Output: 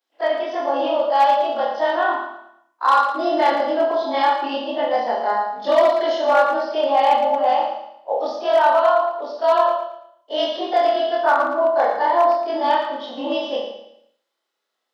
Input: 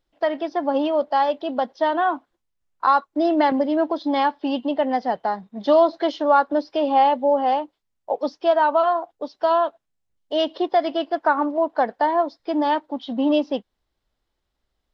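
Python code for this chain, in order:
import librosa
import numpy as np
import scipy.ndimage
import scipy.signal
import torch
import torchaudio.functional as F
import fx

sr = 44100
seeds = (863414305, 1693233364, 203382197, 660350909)

p1 = fx.frame_reverse(x, sr, frame_ms=58.0)
p2 = fx.rev_schroeder(p1, sr, rt60_s=0.54, comb_ms=27, drr_db=0.5)
p3 = 10.0 ** (-12.5 / 20.0) * (np.abs((p2 / 10.0 ** (-12.5 / 20.0) + 3.0) % 4.0 - 2.0) - 1.0)
p4 = p2 + (p3 * 10.0 ** (-4.0 / 20.0))
p5 = scipy.signal.sosfilt(scipy.signal.bessel(8, 450.0, 'highpass', norm='mag', fs=sr, output='sos'), p4)
y = fx.echo_feedback(p5, sr, ms=113, feedback_pct=35, wet_db=-8.5)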